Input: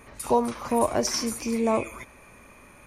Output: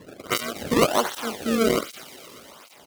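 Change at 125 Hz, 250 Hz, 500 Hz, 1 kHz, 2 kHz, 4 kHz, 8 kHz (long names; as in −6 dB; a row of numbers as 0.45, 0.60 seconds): +5.5, +1.5, +1.5, 0.0, +8.0, +5.5, −1.0 decibels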